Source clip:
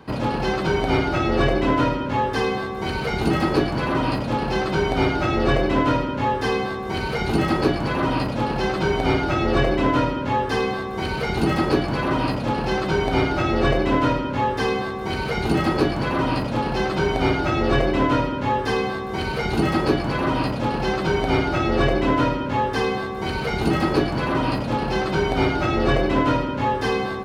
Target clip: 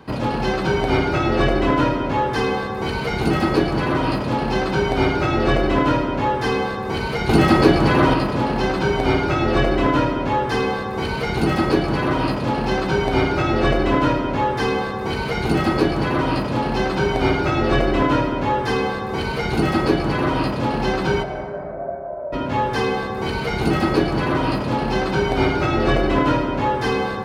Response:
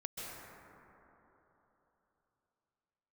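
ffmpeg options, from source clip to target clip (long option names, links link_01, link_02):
-filter_complex "[0:a]asettb=1/sr,asplit=3[link_01][link_02][link_03];[link_01]atrim=end=7.294[link_04];[link_02]atrim=start=7.29:end=8.14,asetpts=PTS-STARTPTS,afade=type=in:duration=0.004:curve=qsin,afade=type=out:start_time=0.846:duration=0.004:curve=qsin,acontrast=31[link_05];[link_03]atrim=start=8.136[link_06];[link_04][link_05]acrossfade=duration=0.004:curve1=hsin:curve2=qsin[link_07];[link_07][link_06]acrossfade=duration=0.004:curve1=qsin:curve2=hsin,asplit=3[link_08][link_09][link_10];[link_08]afade=type=out:start_time=21.22:duration=0.02[link_11];[link_09]asuperpass=centerf=630:order=4:qfactor=5,afade=type=in:start_time=21.22:duration=0.02,afade=type=out:start_time=22.32:duration=0.02[link_12];[link_10]afade=type=in:start_time=22.32:duration=0.02[link_13];[link_11][link_12][link_13]amix=inputs=3:normalize=0,asplit=2[link_14][link_15];[1:a]atrim=start_sample=2205[link_16];[link_15][link_16]afir=irnorm=-1:irlink=0,volume=-6dB[link_17];[link_14][link_17]amix=inputs=2:normalize=0,volume=-1dB"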